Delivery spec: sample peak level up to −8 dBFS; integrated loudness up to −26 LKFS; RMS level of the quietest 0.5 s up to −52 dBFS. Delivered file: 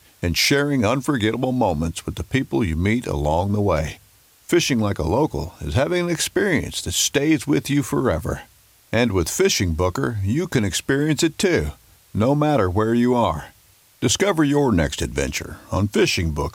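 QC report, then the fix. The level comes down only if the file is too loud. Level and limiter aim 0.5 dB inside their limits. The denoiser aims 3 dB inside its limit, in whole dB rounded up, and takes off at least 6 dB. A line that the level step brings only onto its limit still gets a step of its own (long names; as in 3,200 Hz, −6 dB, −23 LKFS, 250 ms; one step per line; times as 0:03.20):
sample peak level −7.0 dBFS: out of spec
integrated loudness −20.5 LKFS: out of spec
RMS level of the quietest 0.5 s −54 dBFS: in spec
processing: level −6 dB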